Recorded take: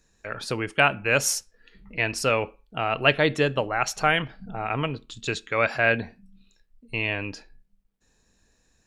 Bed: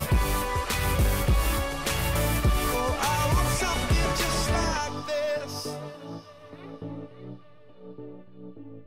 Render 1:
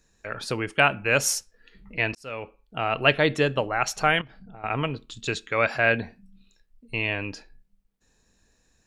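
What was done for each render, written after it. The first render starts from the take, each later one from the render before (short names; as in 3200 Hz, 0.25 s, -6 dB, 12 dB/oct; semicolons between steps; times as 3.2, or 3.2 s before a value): 2.15–2.86 fade in; 4.21–4.64 compressor 2.5:1, threshold -46 dBFS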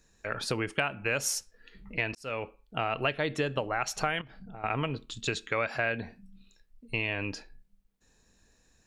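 compressor 6:1, threshold -26 dBFS, peak gain reduction 12.5 dB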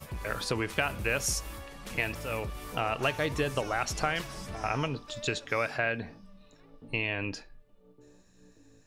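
add bed -16 dB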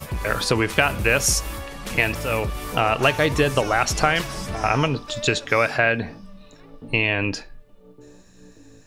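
gain +10.5 dB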